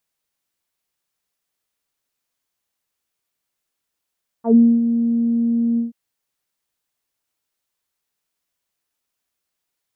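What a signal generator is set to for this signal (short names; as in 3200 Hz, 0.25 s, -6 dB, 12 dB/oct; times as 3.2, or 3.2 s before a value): synth note saw A#3 24 dB/oct, low-pass 290 Hz, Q 2.9, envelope 2 oct, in 0.10 s, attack 96 ms, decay 0.27 s, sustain -9 dB, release 0.14 s, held 1.34 s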